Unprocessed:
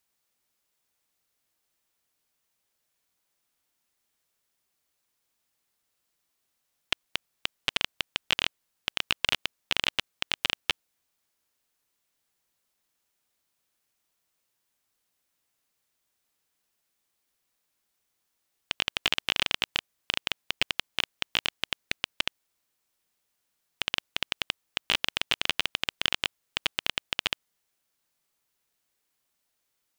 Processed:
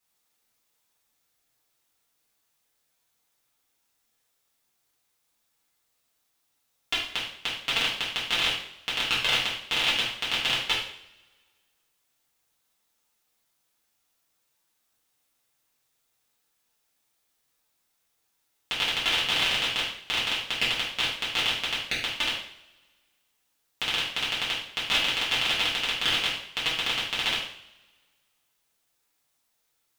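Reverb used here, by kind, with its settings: two-slope reverb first 0.58 s, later 1.7 s, from -22 dB, DRR -9 dB; trim -5.5 dB

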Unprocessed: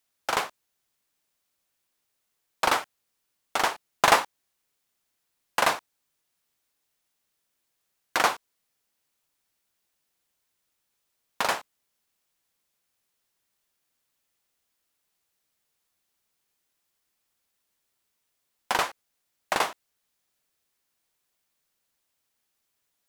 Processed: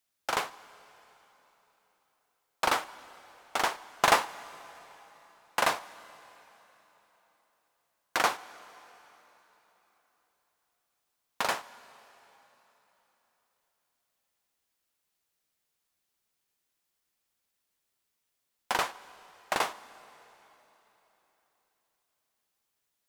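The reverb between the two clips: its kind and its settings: plate-style reverb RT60 3.9 s, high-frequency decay 0.9×, DRR 17 dB; trim -3.5 dB

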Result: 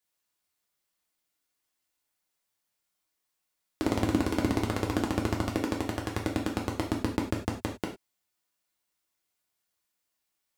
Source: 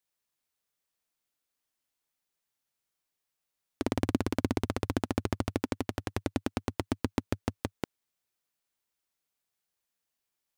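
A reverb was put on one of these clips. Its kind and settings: gated-style reverb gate 130 ms falling, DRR -1 dB

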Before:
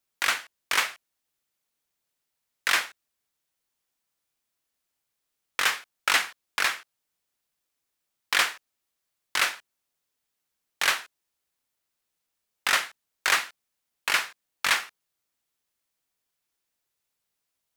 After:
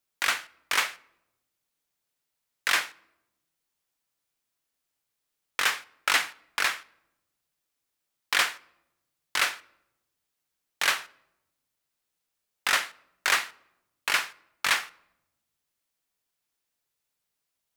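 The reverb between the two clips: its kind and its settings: simulated room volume 3400 m³, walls furnished, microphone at 0.36 m; trim -1 dB

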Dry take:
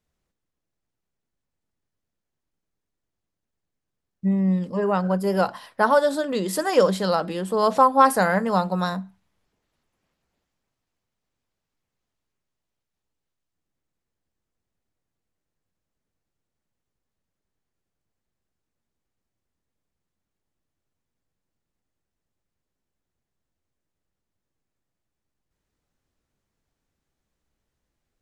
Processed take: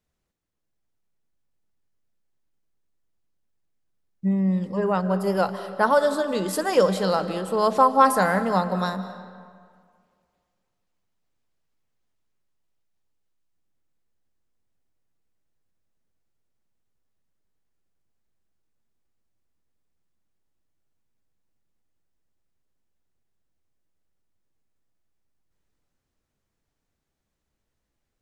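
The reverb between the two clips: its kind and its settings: algorithmic reverb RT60 2 s, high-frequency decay 0.65×, pre-delay 120 ms, DRR 11.5 dB; trim -1 dB

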